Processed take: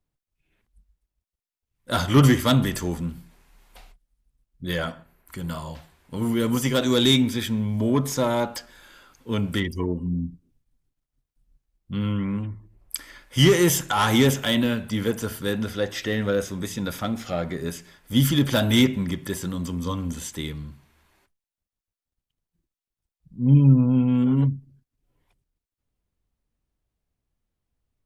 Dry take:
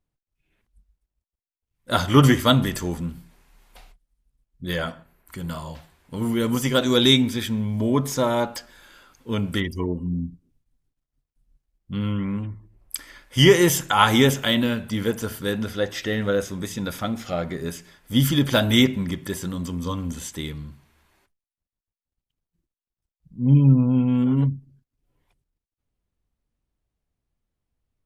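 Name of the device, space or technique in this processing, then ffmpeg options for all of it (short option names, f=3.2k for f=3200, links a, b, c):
one-band saturation: -filter_complex "[0:a]acrossover=split=310|4900[a][b][c];[b]asoftclip=type=tanh:threshold=-17dB[d];[a][d][c]amix=inputs=3:normalize=0"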